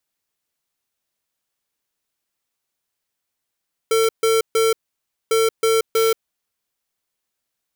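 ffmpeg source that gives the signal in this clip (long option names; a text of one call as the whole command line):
ffmpeg -f lavfi -i "aevalsrc='0.15*(2*lt(mod(450*t,1),0.5)-1)*clip(min(mod(mod(t,1.4),0.32),0.18-mod(mod(t,1.4),0.32))/0.005,0,1)*lt(mod(t,1.4),0.96)':duration=2.8:sample_rate=44100" out.wav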